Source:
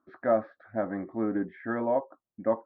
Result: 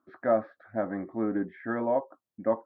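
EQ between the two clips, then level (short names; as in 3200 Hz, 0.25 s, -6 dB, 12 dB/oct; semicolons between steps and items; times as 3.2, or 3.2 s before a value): HPF 54 Hz; 0.0 dB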